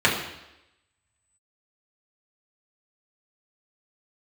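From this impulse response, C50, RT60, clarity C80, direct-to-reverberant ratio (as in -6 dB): 5.5 dB, 0.90 s, 8.0 dB, -4.5 dB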